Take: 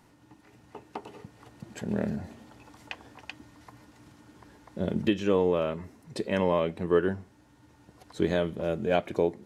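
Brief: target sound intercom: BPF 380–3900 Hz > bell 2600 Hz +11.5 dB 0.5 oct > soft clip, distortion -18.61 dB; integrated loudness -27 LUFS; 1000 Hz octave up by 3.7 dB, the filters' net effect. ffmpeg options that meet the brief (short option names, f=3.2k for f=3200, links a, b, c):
-af "highpass=380,lowpass=3.9k,equalizer=f=1k:t=o:g=4.5,equalizer=f=2.6k:t=o:w=0.5:g=11.5,asoftclip=threshold=-15.5dB,volume=4dB"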